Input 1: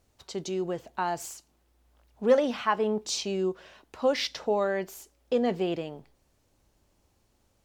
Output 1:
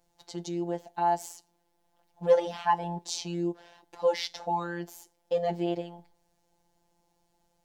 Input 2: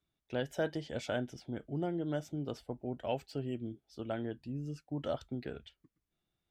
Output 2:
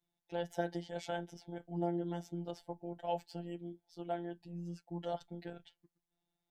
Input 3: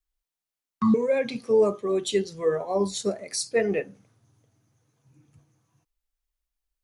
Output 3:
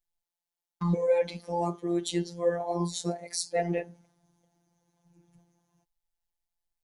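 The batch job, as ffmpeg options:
-af "afftfilt=real='hypot(re,im)*cos(PI*b)':imag='0':win_size=1024:overlap=0.75,equalizer=f=800:t=o:w=0.33:g=12,equalizer=f=1250:t=o:w=0.33:g=-6,equalizer=f=2500:t=o:w=0.33:g=-4"

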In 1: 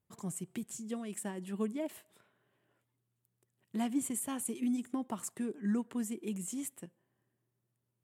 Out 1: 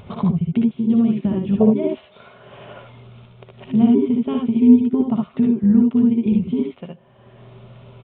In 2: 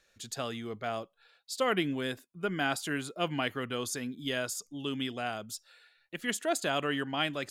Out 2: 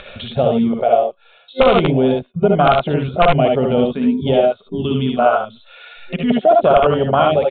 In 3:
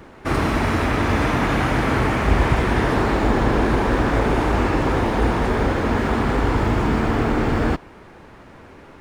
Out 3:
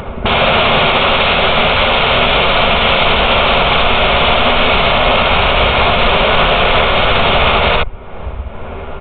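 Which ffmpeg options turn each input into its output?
-af "afwtdn=0.0398,aeval=exprs='(mod(11.2*val(0)+1,2)-1)/11.2':c=same,superequalizer=6b=0.316:8b=1.58:11b=0.398,acompressor=threshold=0.0355:ratio=8,asubboost=boost=3.5:cutoff=62,acompressor=mode=upward:threshold=0.0158:ratio=2.5,aecho=1:1:61|74:0.531|0.631,aresample=8000,aresample=44100,alimiter=level_in=12.6:limit=0.891:release=50:level=0:latency=1,volume=0.891"

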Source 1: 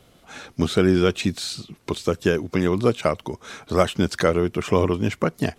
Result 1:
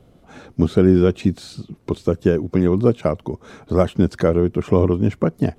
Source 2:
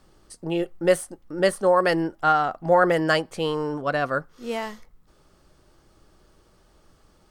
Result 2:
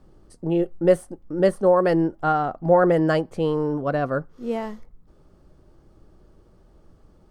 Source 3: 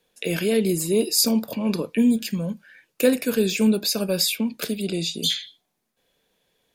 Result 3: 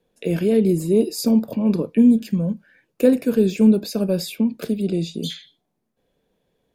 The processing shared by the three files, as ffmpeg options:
-af "tiltshelf=f=970:g=8,volume=0.794"

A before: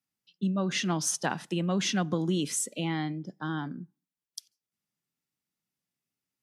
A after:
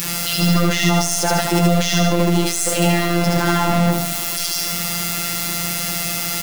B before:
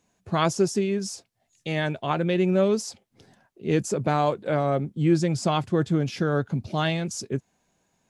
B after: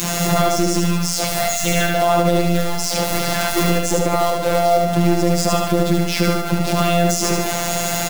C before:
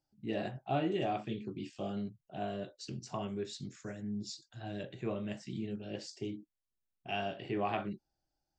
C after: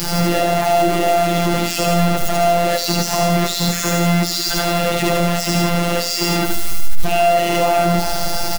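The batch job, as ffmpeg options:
-filter_complex "[0:a]aeval=exprs='val(0)+0.5*0.0422*sgn(val(0))':c=same,aeval=exprs='0.355*(cos(1*acos(clip(val(0)/0.355,-1,1)))-cos(1*PI/2))+0.0562*(cos(4*acos(clip(val(0)/0.355,-1,1)))-cos(4*PI/2))':c=same,adynamicequalizer=threshold=0.02:dfrequency=690:dqfactor=0.86:tfrequency=690:tqfactor=0.86:attack=5:release=100:ratio=0.375:range=2.5:mode=boostabove:tftype=bell,acompressor=threshold=0.0224:ratio=20,equalizer=f=130:t=o:w=0.33:g=-3,acrusher=bits=3:mode=log:mix=0:aa=0.000001,afftfilt=real='hypot(re,im)*cos(PI*b)':imag='0':win_size=1024:overlap=0.75,asplit=2[s0][s1];[s1]aecho=0:1:74|148|222|296|370|444|518:0.668|0.334|0.167|0.0835|0.0418|0.0209|0.0104[s2];[s0][s2]amix=inputs=2:normalize=0,alimiter=level_in=16.8:limit=0.891:release=50:level=0:latency=1,volume=0.891"

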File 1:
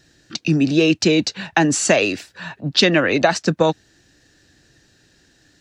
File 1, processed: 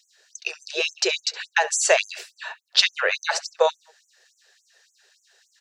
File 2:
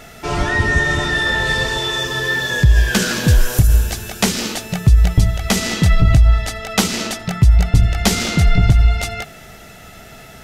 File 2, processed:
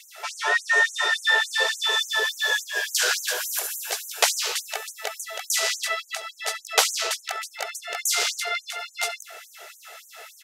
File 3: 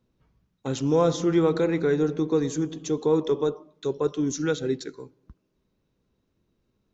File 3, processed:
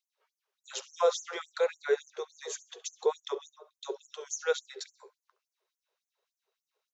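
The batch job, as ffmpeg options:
-filter_complex "[0:a]asplit=2[s0][s1];[s1]adelay=68,lowpass=f=4600:p=1,volume=0.15,asplit=2[s2][s3];[s3]adelay=68,lowpass=f=4600:p=1,volume=0.4,asplit=2[s4][s5];[s5]adelay=68,lowpass=f=4600:p=1,volume=0.4[s6];[s0][s2][s4][s6]amix=inputs=4:normalize=0,afftfilt=real='re*gte(b*sr/1024,350*pow(6100/350,0.5+0.5*sin(2*PI*3.5*pts/sr)))':imag='im*gte(b*sr/1024,350*pow(6100/350,0.5+0.5*sin(2*PI*3.5*pts/sr)))':win_size=1024:overlap=0.75,volume=0.891"

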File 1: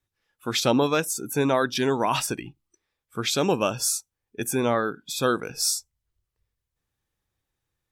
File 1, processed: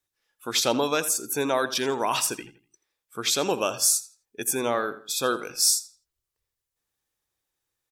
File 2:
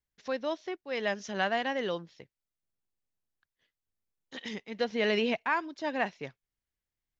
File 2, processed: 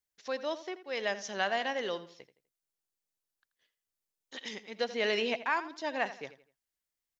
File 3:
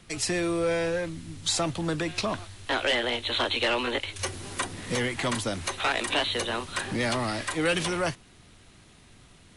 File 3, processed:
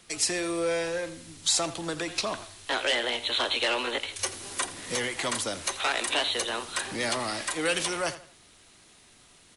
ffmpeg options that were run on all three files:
-filter_complex "[0:a]bass=f=250:g=-10,treble=f=4000:g=6,asplit=2[s0][s1];[s1]adelay=83,lowpass=f=4600:p=1,volume=0.2,asplit=2[s2][s3];[s3]adelay=83,lowpass=f=4600:p=1,volume=0.34,asplit=2[s4][s5];[s5]adelay=83,lowpass=f=4600:p=1,volume=0.34[s6];[s0][s2][s4][s6]amix=inputs=4:normalize=0,volume=0.841"

